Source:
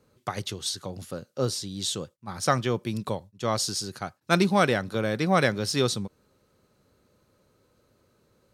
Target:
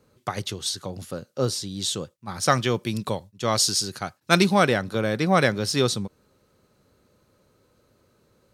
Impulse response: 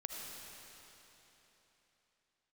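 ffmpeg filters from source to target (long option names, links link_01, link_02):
-filter_complex "[0:a]asplit=3[link_01][link_02][link_03];[link_01]afade=type=out:start_time=2.15:duration=0.02[link_04];[link_02]adynamicequalizer=threshold=0.0141:dfrequency=1700:dqfactor=0.7:tfrequency=1700:tqfactor=0.7:attack=5:release=100:ratio=0.375:range=2.5:mode=boostabove:tftype=highshelf,afade=type=in:start_time=2.15:duration=0.02,afade=type=out:start_time=4.53:duration=0.02[link_05];[link_03]afade=type=in:start_time=4.53:duration=0.02[link_06];[link_04][link_05][link_06]amix=inputs=3:normalize=0,volume=2.5dB"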